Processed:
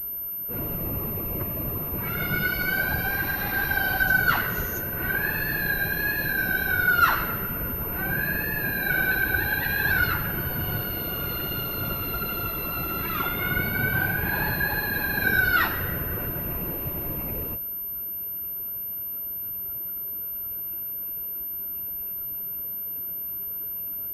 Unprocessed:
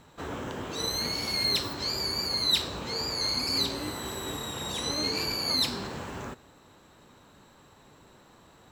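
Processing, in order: whisper effect; wide varispeed 0.361×; class-D stage that switches slowly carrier 13 kHz; trim +4 dB

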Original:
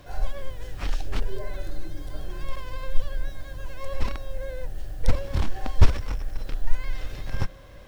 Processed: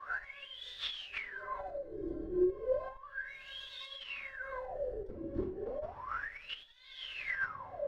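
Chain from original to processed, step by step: simulated room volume 48 m³, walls mixed, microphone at 3.3 m; compression 8:1, threshold -1 dBFS, peak gain reduction 22 dB; wah-wah 0.33 Hz 330–3600 Hz, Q 21; trim +9.5 dB

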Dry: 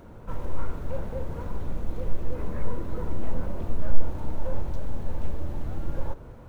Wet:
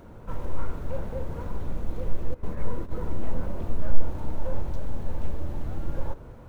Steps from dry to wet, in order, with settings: 2.34–3.01 s: gate -25 dBFS, range -15 dB

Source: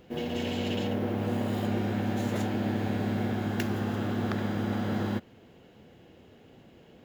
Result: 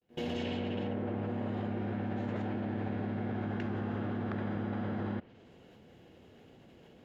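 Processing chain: fade-in on the opening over 0.71 s; low-pass that closes with the level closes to 2.3 kHz, closed at -28.5 dBFS; level held to a coarse grid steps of 22 dB; trim +9 dB

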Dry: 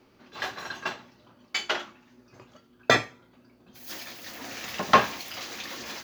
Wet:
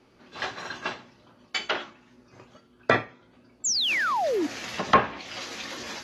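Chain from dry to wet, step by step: low-pass that closes with the level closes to 2.1 kHz, closed at -21 dBFS; painted sound fall, 3.64–4.47 s, 270–7700 Hz -25 dBFS; AAC 32 kbps 32 kHz

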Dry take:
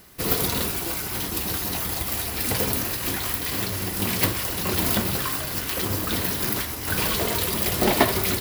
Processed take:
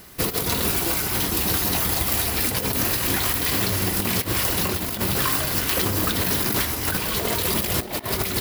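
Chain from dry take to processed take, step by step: compressor with a negative ratio -26 dBFS, ratio -0.5; trim +3.5 dB

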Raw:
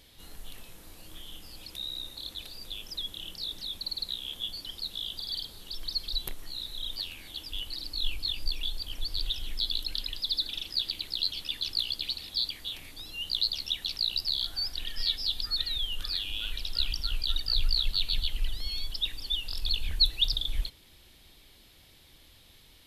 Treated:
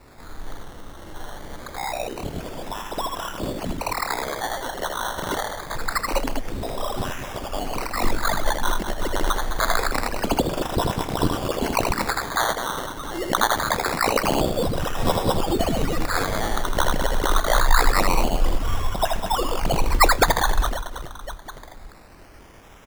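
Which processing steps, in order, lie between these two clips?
reverse bouncing-ball echo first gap 80 ms, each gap 1.6×, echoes 5; decimation with a swept rate 14×, swing 60% 0.25 Hz; trim +7.5 dB

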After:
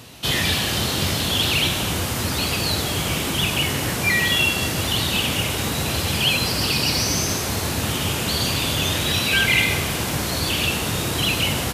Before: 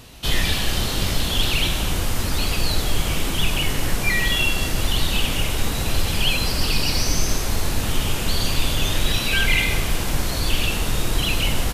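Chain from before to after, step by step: high-pass 79 Hz 24 dB/octave; trim +2.5 dB

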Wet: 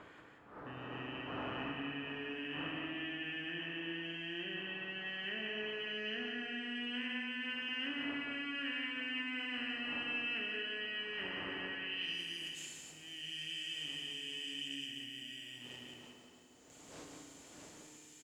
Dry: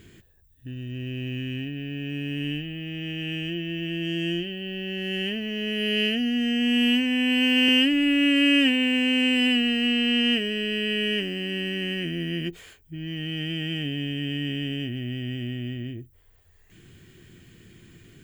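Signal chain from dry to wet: wind noise 320 Hz -37 dBFS; bass shelf 160 Hz +5 dB; in parallel at -9 dB: saturation -20 dBFS, distortion -12 dB; on the sum: band-pass sweep 1.3 kHz -> 7 kHz, 11.70–12.21 s; reverse; compression 10:1, threshold -44 dBFS, peak gain reduction 16.5 dB; reverse; loudspeakers at several distances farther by 16 m -11 dB, 61 m -4 dB; FDN reverb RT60 2.3 s, low-frequency decay 1.4×, high-frequency decay 0.9×, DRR 4 dB; trim +3.5 dB

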